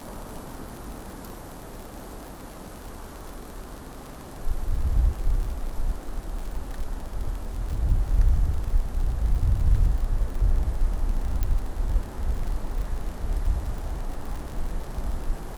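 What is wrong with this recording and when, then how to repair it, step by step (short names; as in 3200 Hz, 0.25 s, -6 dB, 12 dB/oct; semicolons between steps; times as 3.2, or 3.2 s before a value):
crackle 57/s -32 dBFS
11.43 pop -13 dBFS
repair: de-click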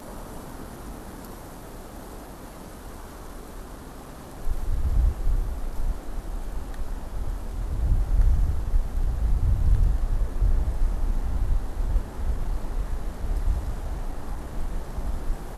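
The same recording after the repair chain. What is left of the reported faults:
none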